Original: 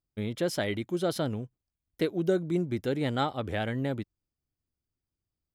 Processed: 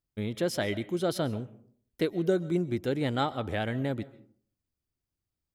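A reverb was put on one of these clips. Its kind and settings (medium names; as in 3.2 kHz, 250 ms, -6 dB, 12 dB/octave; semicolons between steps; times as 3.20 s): algorithmic reverb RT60 0.53 s, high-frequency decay 0.45×, pre-delay 95 ms, DRR 17.5 dB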